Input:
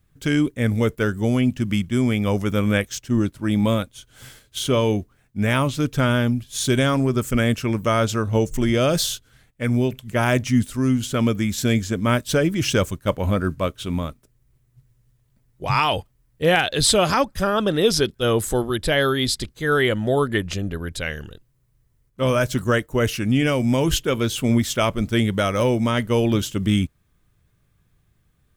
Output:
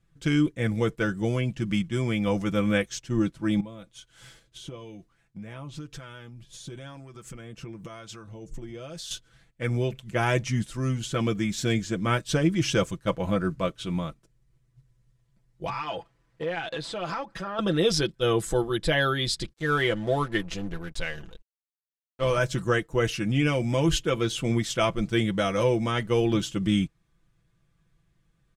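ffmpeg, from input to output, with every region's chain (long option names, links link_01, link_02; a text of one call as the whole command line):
ffmpeg -i in.wav -filter_complex "[0:a]asettb=1/sr,asplit=3[link_01][link_02][link_03];[link_01]atrim=end=3.604[link_04];[link_02]atrim=start=3.6:end=9.11,asetpts=PTS-STARTPTS,afade=type=in:duration=0.004:curve=qsin,afade=type=out:start_time=5.506:duration=0.004:curve=qsin,acompressor=threshold=-29dB:ratio=16:attack=3.2:release=140:knee=1:detection=peak,acrossover=split=900[link_05][link_06];[link_05]aeval=exprs='val(0)*(1-0.5/2+0.5/2*cos(2*PI*1*n/s))':channel_layout=same[link_07];[link_06]aeval=exprs='val(0)*(1-0.5/2-0.5/2*cos(2*PI*1*n/s))':channel_layout=same[link_08];[link_07][link_08]amix=inputs=2:normalize=0[link_09];[link_03]atrim=start=9.106[link_10];[link_04][link_09]acrossfade=duration=0.004:curve1=hsin:curve2=qsin[link_11];[link_11][link_10]acrossfade=duration=0.004:curve1=qsin:curve2=hsin,asettb=1/sr,asplit=3[link_12][link_13][link_14];[link_12]atrim=end=15.694[link_15];[link_13]atrim=start=15.69:end=17.59,asetpts=PTS-STARTPTS,afade=type=in:duration=0.004:curve=qsin,afade=type=out:start_time=1.896:duration=0.004:curve=qsin,acompressor=threshold=-32dB:ratio=12:attack=3.2:release=140:knee=1:detection=peak,asplit=2[link_16][link_17];[link_17]highpass=frequency=720:poles=1,volume=21dB,asoftclip=type=tanh:threshold=-12.5dB[link_18];[link_16][link_18]amix=inputs=2:normalize=0,lowpass=frequency=1500:poles=1,volume=-6dB[link_19];[link_14]atrim=start=17.586[link_20];[link_15][link_19]acrossfade=duration=0.004:curve1=hsin:curve2=qsin[link_21];[link_21][link_20]acrossfade=duration=0.004:curve1=qsin:curve2=hsin,asettb=1/sr,asplit=3[link_22][link_23][link_24];[link_22]atrim=end=19.534[link_25];[link_23]atrim=start=19.53:end=22.38,asetpts=PTS-STARTPTS,afade=type=in:duration=0.004:curve=qsin,afade=type=out:start_time=2.846:duration=0.004:curve=qsin,asubboost=boost=7:cutoff=54,aeval=exprs='sgn(val(0))*max(abs(val(0))-0.0112,0)':channel_layout=same[link_26];[link_24]atrim=start=22.376[link_27];[link_25][link_26]acrossfade=duration=0.004:curve1=hsin:curve2=qsin[link_28];[link_28][link_27]acrossfade=duration=0.004:curve1=qsin:curve2=hsin,lowpass=8100,aecho=1:1:6:0.67,volume=-5.5dB" out.wav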